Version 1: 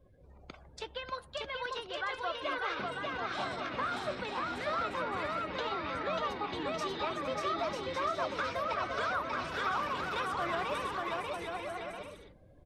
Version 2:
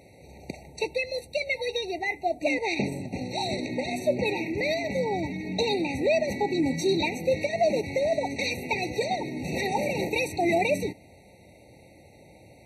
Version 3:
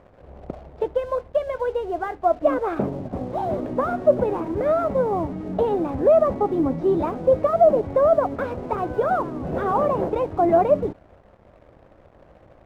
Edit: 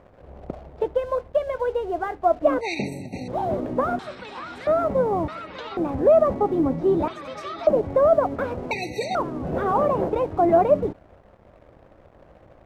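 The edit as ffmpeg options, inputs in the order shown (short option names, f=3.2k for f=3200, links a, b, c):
-filter_complex "[1:a]asplit=2[a][b];[0:a]asplit=3[c][d][e];[2:a]asplit=6[f][g][h][i][j][k];[f]atrim=end=2.612[l];[a]atrim=start=2.608:end=3.282[m];[g]atrim=start=3.278:end=3.992[n];[c]atrim=start=3.988:end=4.672[o];[h]atrim=start=4.668:end=5.282[p];[d]atrim=start=5.278:end=5.772[q];[i]atrim=start=5.768:end=7.082[r];[e]atrim=start=7.078:end=7.672[s];[j]atrim=start=7.668:end=8.712[t];[b]atrim=start=8.708:end=9.152[u];[k]atrim=start=9.148[v];[l][m]acrossfade=d=0.004:c1=hsin:c2=hsin[w];[w][n]acrossfade=d=0.004:c1=hsin:c2=hsin[x];[x][o]acrossfade=d=0.004:c1=hsin:c2=hsin[y];[y][p]acrossfade=d=0.004:c1=hsin:c2=hsin[z];[z][q]acrossfade=d=0.004:c1=hsin:c2=hsin[aa];[aa][r]acrossfade=d=0.004:c1=hsin:c2=hsin[ab];[ab][s]acrossfade=d=0.004:c1=hsin:c2=hsin[ac];[ac][t]acrossfade=d=0.004:c1=hsin:c2=hsin[ad];[ad][u]acrossfade=d=0.004:c1=hsin:c2=hsin[ae];[ae][v]acrossfade=d=0.004:c1=hsin:c2=hsin"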